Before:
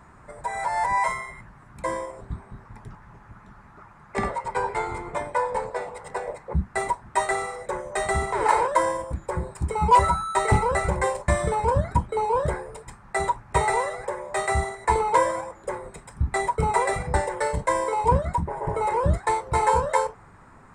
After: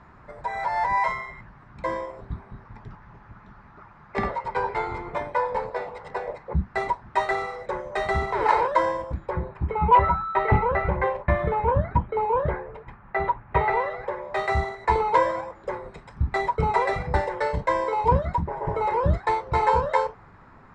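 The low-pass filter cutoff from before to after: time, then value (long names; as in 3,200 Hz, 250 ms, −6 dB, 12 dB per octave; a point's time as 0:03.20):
low-pass filter 24 dB per octave
0:09.11 5,000 Hz
0:09.58 2,800 Hz
0:13.59 2,800 Hz
0:14.53 5,000 Hz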